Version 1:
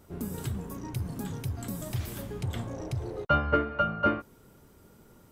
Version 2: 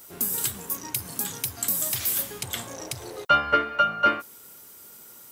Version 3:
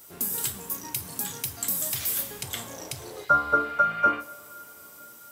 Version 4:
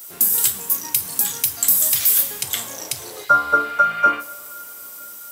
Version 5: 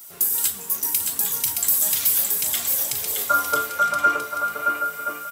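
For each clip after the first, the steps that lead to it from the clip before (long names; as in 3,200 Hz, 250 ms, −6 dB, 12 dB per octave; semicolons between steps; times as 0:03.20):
spectral tilt +4.5 dB per octave; level +4.5 dB
healed spectral selection 0:03.24–0:04.10, 1,500–5,300 Hz both; on a send at −8.5 dB: convolution reverb, pre-delay 3 ms; on the sum: level −2.5 dB
spectral tilt +2 dB per octave; level +5 dB
flanger 0.68 Hz, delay 0.8 ms, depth 4.6 ms, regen −46%; on a send: bouncing-ball delay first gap 620 ms, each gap 0.65×, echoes 5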